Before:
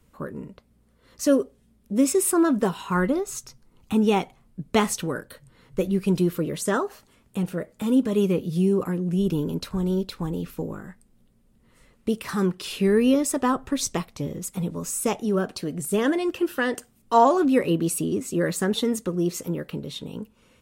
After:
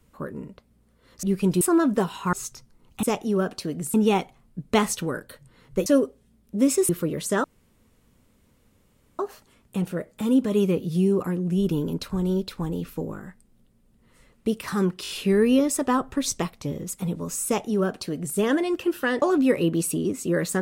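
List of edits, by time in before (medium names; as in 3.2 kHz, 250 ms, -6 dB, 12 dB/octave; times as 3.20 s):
1.23–2.26 s: swap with 5.87–6.25 s
2.98–3.25 s: delete
6.80 s: insert room tone 1.75 s
12.64 s: stutter 0.02 s, 4 plays
15.01–15.92 s: copy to 3.95 s
16.77–17.29 s: delete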